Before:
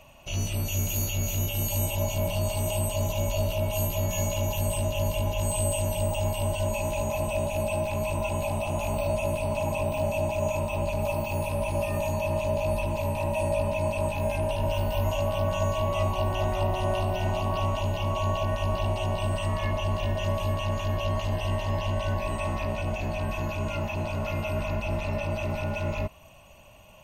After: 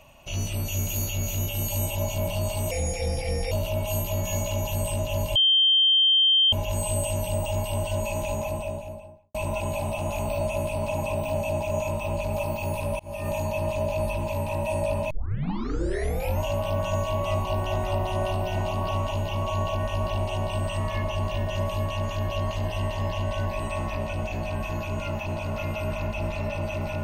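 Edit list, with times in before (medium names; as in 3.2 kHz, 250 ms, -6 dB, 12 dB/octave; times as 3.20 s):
2.71–3.37 s: speed 82%
5.21 s: add tone 3.15 kHz -16 dBFS 1.17 s
6.95–8.03 s: studio fade out
11.68–11.98 s: fade in
13.79 s: tape start 1.32 s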